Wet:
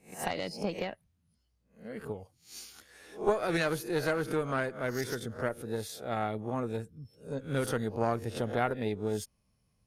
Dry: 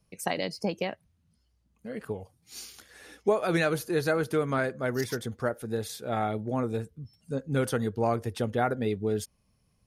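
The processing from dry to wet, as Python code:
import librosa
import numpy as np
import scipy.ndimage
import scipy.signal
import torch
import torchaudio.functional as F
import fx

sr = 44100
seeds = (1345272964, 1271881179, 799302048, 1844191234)

y = fx.spec_swells(x, sr, rise_s=0.33)
y = fx.cheby_harmonics(y, sr, harmonics=(2,), levels_db=(-8,), full_scale_db=-11.0)
y = F.gain(torch.from_numpy(y), -5.0).numpy()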